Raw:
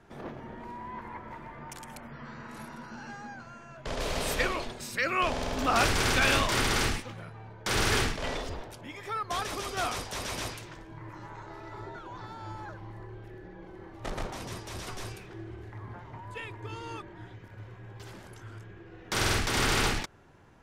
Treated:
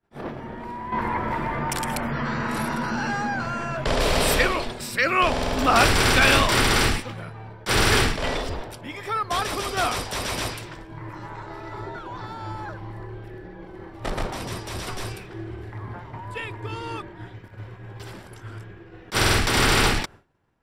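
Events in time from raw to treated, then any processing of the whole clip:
0.92–4.43 s: level flattener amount 50%
whole clip: expander -44 dBFS; band-stop 6.5 kHz, Q 7.3; attacks held to a fixed rise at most 430 dB/s; trim +7.5 dB

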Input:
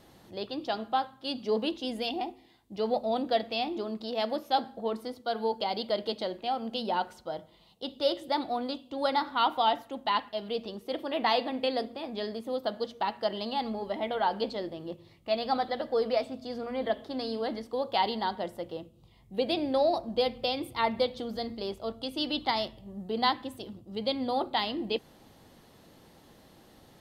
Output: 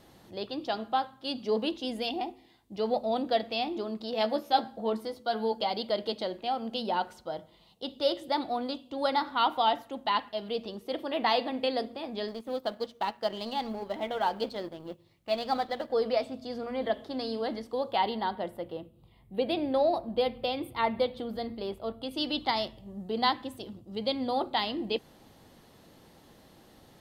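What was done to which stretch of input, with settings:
4.12–5.71 s: doubling 14 ms -6 dB
12.28–15.90 s: companding laws mixed up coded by A
17.92–22.11 s: peaking EQ 6 kHz -13 dB 0.79 oct

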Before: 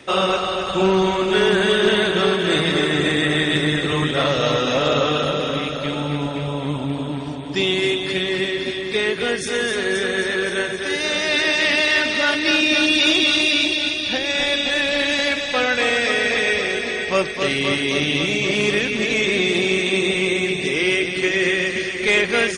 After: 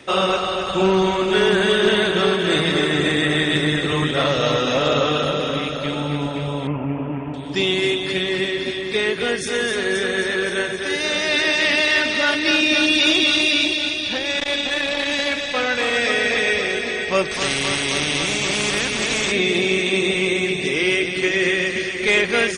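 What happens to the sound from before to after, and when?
6.67–7.34 s: steep low-pass 2.8 kHz 72 dB/octave
13.72–15.94 s: transformer saturation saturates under 1.1 kHz
17.31–19.32 s: spectrum-flattening compressor 2:1

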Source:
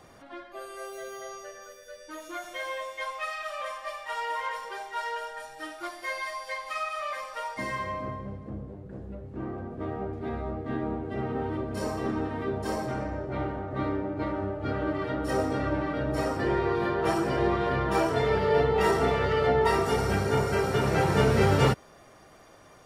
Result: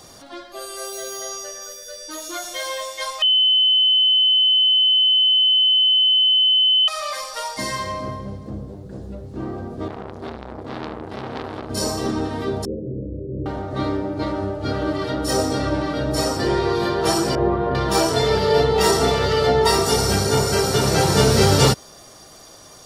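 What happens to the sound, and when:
3.22–6.88 s: bleep 3.04 kHz -23 dBFS
9.88–11.70 s: transformer saturation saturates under 1.4 kHz
12.65–13.46 s: rippled Chebyshev low-pass 540 Hz, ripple 3 dB
17.35–17.75 s: low-pass 1.2 kHz
whole clip: resonant high shelf 3.2 kHz +10.5 dB, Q 1.5; trim +6.5 dB

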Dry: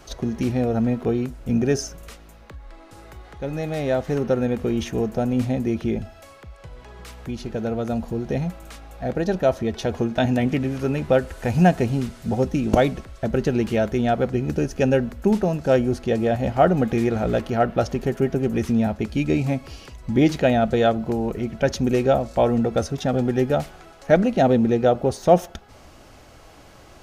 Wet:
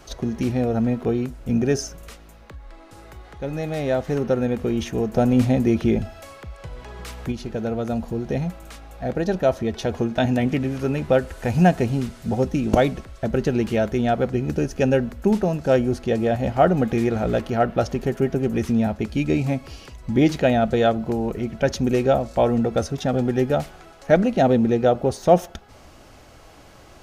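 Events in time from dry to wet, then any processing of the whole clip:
5.14–7.32 s: gain +4.5 dB

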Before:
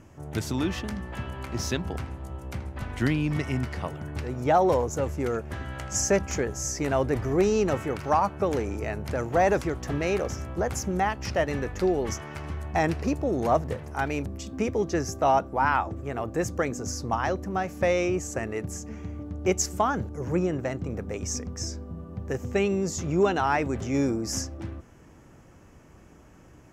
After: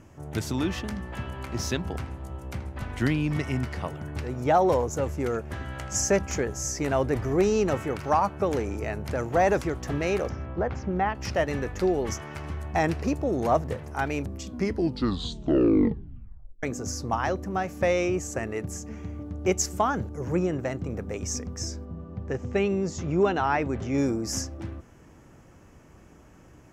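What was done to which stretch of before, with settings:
10.29–11.15 s: Gaussian low-pass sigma 2.4 samples
14.40 s: tape stop 2.23 s
21.85–23.98 s: distance through air 93 m

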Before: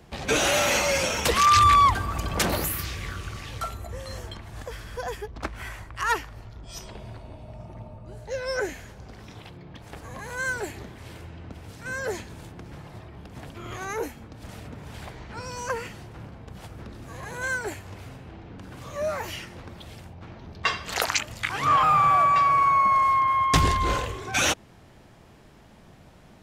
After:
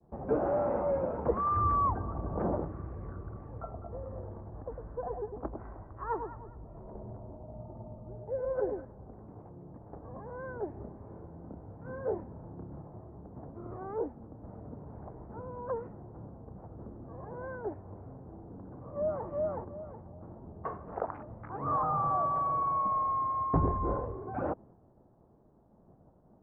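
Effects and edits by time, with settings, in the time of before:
3.61–8.85 s: echo whose repeats swap between lows and highs 102 ms, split 980 Hz, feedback 50%, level -5 dB
10.71–12.82 s: doubling 29 ms -5 dB
18.58–19.27 s: echo throw 370 ms, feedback 25%, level -0.5 dB
whole clip: Bessel low-pass 640 Hz, order 6; bass shelf 180 Hz -8 dB; expander -51 dBFS

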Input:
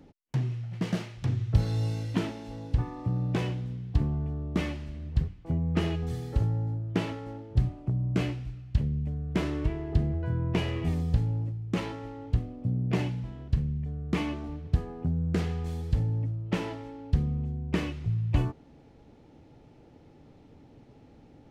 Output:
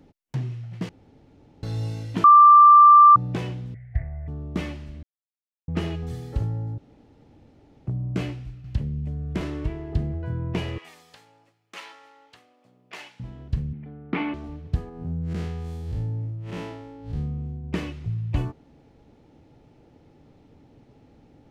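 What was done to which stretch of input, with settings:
0.89–1.63 s: room tone
2.24–3.16 s: bleep 1.18 kHz -7.5 dBFS
3.74–4.28 s: FFT filter 110 Hz 0 dB, 180 Hz -20 dB, 290 Hz -23 dB, 450 Hz -16 dB, 670 Hz +4 dB, 1 kHz -22 dB, 2 kHz +14 dB, 2.8 kHz -18 dB, 4.4 kHz -25 dB
5.03–5.68 s: mute
6.78–7.87 s: room tone
8.64–9.41 s: three bands compressed up and down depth 40%
10.78–13.20 s: high-pass 1.1 kHz
13.73–14.34 s: cabinet simulation 190–3500 Hz, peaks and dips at 270 Hz +7 dB, 840 Hz +7 dB, 1.4 kHz +8 dB, 2.2 kHz +7 dB
14.89–17.64 s: spectral blur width 119 ms

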